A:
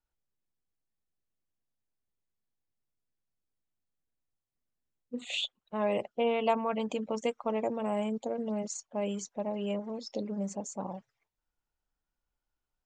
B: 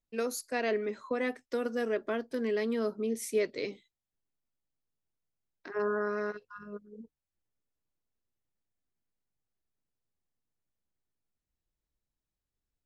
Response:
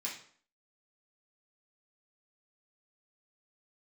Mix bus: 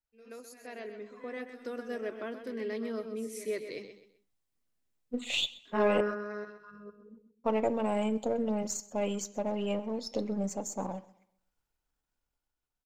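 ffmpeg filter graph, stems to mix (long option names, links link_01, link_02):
-filter_complex "[0:a]aeval=exprs='if(lt(val(0),0),0.708*val(0),val(0))':channel_layout=same,volume=-5.5dB,asplit=3[link_01][link_02][link_03];[link_01]atrim=end=6.01,asetpts=PTS-STARTPTS,afade=type=out:start_time=6.006:duration=0.004:curve=hsin[link_04];[link_02]atrim=start=6.01:end=7.44,asetpts=PTS-STARTPTS,volume=0[link_05];[link_03]atrim=start=7.44,asetpts=PTS-STARTPTS,afade=type=in:duration=0.004:curve=hsin[link_06];[link_04][link_05][link_06]concat=n=3:v=0:a=1,asplit=4[link_07][link_08][link_09][link_10];[link_08]volume=-15dB[link_11];[link_09]volume=-20.5dB[link_12];[1:a]volume=-9.5dB,asplit=3[link_13][link_14][link_15];[link_14]volume=-18.5dB[link_16];[link_15]volume=-5.5dB[link_17];[link_10]apad=whole_len=566826[link_18];[link_13][link_18]sidechaingate=range=-29dB:threshold=-55dB:ratio=16:detection=peak[link_19];[2:a]atrim=start_sample=2205[link_20];[link_11][link_16]amix=inputs=2:normalize=0[link_21];[link_21][link_20]afir=irnorm=-1:irlink=0[link_22];[link_12][link_17]amix=inputs=2:normalize=0,aecho=0:1:129|258|387|516:1|0.31|0.0961|0.0298[link_23];[link_07][link_19][link_22][link_23]amix=inputs=4:normalize=0,dynaudnorm=framelen=190:gausssize=13:maxgain=9dB"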